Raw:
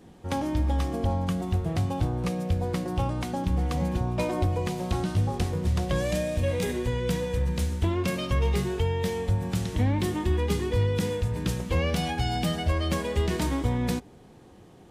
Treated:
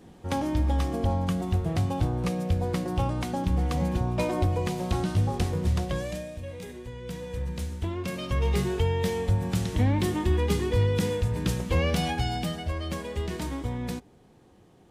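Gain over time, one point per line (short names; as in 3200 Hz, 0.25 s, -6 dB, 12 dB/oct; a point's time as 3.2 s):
5.72 s +0.5 dB
6.42 s -12 dB
6.94 s -12 dB
7.4 s -5.5 dB
8.03 s -5.5 dB
8.61 s +1 dB
12.11 s +1 dB
12.62 s -5.5 dB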